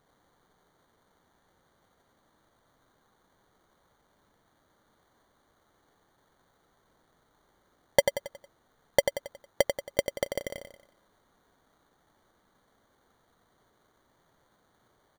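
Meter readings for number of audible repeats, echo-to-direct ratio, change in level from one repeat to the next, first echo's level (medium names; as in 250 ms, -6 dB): 4, -5.5 dB, -7.5 dB, -6.5 dB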